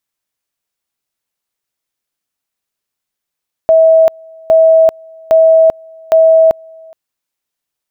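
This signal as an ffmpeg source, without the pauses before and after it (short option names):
-f lavfi -i "aevalsrc='pow(10,(-3.5-29*gte(mod(t,0.81),0.39))/20)*sin(2*PI*647*t)':d=3.24:s=44100"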